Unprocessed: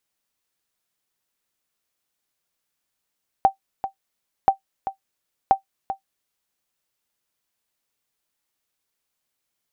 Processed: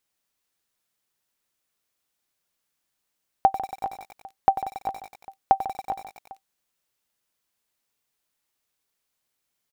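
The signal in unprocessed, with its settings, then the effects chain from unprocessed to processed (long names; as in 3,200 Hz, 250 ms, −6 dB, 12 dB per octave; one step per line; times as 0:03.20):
ping with an echo 778 Hz, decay 0.11 s, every 1.03 s, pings 3, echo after 0.39 s, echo −11.5 dB −5.5 dBFS
on a send: multi-tap delay 147/410 ms −14.5/−13 dB
on the sum: feedback echo at a low word length 93 ms, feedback 80%, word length 6 bits, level −12.5 dB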